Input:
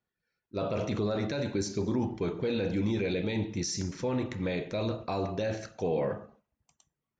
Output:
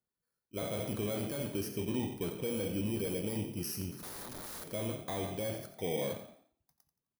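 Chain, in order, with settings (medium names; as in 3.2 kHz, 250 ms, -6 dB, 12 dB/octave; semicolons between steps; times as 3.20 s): bit-reversed sample order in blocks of 16 samples; 3.91–4.68 s: integer overflow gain 34.5 dB; frequency-shifting echo 87 ms, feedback 37%, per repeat +38 Hz, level -12 dB; trim -5.5 dB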